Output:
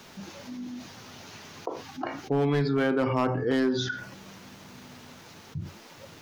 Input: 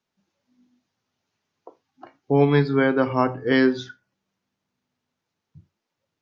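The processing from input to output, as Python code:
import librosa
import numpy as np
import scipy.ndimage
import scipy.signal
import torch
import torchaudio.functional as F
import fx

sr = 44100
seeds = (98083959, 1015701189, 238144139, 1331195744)

y = fx.peak_eq(x, sr, hz=2200.0, db=-10.5, octaves=0.44, at=(3.47, 3.88))
y = np.clip(y, -10.0 ** (-12.5 / 20.0), 10.0 ** (-12.5 / 20.0))
y = fx.env_flatten(y, sr, amount_pct=70)
y = y * 10.0 ** (-7.0 / 20.0)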